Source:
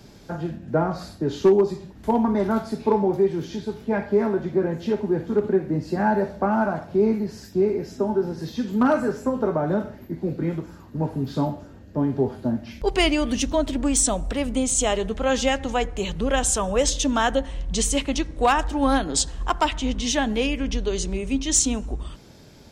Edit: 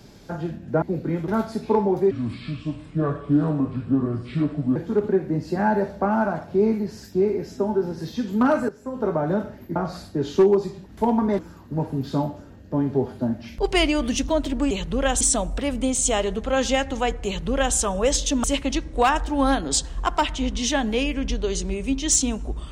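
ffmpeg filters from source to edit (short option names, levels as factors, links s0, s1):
-filter_complex "[0:a]asplit=11[s0][s1][s2][s3][s4][s5][s6][s7][s8][s9][s10];[s0]atrim=end=0.822[s11];[s1]atrim=start=10.158:end=10.622[s12];[s2]atrim=start=2.448:end=3.284[s13];[s3]atrim=start=3.28:end=5.16,asetpts=PTS-STARTPTS,asetrate=31311,aresample=44100[s14];[s4]atrim=start=5.156:end=9.09,asetpts=PTS-STARTPTS,afade=t=out:st=3.93:d=0.004:c=hsin:silence=0.188365[s15];[s5]atrim=start=9.09:end=10.162,asetpts=PTS-STARTPTS,afade=t=in:d=0.39:c=qua:silence=0.188365[s16];[s6]atrim=start=0.818:end=2.452[s17];[s7]atrim=start=10.618:end=13.942[s18];[s8]atrim=start=15.988:end=16.492[s19];[s9]atrim=start=13.938:end=17.172[s20];[s10]atrim=start=17.868[s21];[s11][s12]acrossfade=d=0.004:c1=hsin:c2=hsin[s22];[s22][s13]acrossfade=d=0.004:c1=hsin:c2=hsin[s23];[s23][s14]acrossfade=d=0.004:c1=hsin:c2=hsin[s24];[s15][s16]concat=n=2:v=0:a=1[s25];[s24][s25]acrossfade=d=0.004:c1=hsin:c2=hsin[s26];[s26][s17]acrossfade=d=0.004:c1=hsin:c2=hsin[s27];[s27][s18]acrossfade=d=0.004:c1=hsin:c2=hsin[s28];[s28][s19]acrossfade=d=0.004:c1=hsin:c2=hsin[s29];[s29][s20]acrossfade=d=0.004:c1=hsin:c2=hsin[s30];[s30][s21]acrossfade=d=0.004:c1=hsin:c2=hsin"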